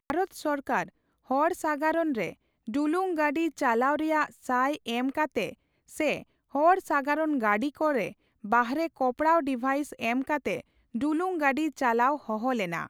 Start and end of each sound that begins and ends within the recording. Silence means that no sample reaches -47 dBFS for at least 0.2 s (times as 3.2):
1.3–2.33
2.67–5.54
5.89–6.23
6.54–8.13
8.44–10.61